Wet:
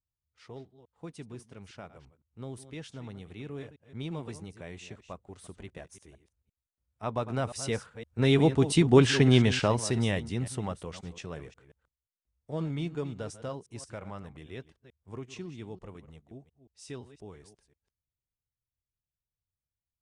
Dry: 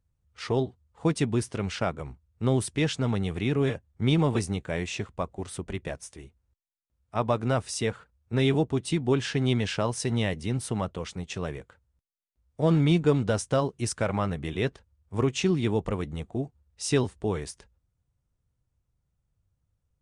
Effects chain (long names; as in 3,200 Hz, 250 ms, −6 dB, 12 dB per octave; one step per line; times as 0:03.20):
delay that plays each chunk backwards 174 ms, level −13.5 dB
source passing by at 0:09.04, 6 m/s, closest 3.1 metres
level +5.5 dB